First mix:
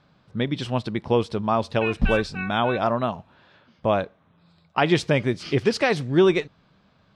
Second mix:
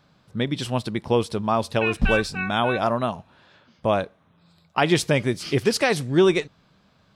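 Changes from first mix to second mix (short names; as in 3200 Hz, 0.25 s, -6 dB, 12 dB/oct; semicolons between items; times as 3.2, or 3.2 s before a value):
speech: remove Bessel low-pass 4200 Hz, order 2; background +3.5 dB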